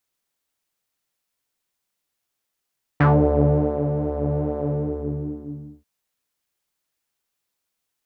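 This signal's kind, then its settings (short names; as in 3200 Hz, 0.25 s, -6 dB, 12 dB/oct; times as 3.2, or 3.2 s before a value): synth patch with pulse-width modulation D3, interval -12 st, detune 28 cents, oscillator 2 level -2.5 dB, filter lowpass, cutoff 240 Hz, filter envelope 3 oct, filter decay 0.16 s, attack 7.4 ms, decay 0.89 s, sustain -9 dB, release 1.20 s, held 1.64 s, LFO 2.4 Hz, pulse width 25%, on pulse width 20%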